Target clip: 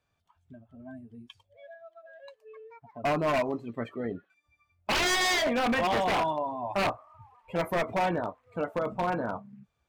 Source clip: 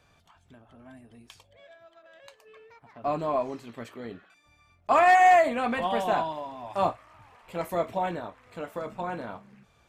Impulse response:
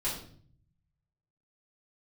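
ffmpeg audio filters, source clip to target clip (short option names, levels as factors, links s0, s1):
-filter_complex "[0:a]afftdn=nr=22:nf=-44,asplit=2[s0][s1];[s1]acompressor=threshold=0.0282:ratio=5,volume=1[s2];[s0][s2]amix=inputs=2:normalize=0,aeval=exprs='0.0891*(abs(mod(val(0)/0.0891+3,4)-2)-1)':c=same"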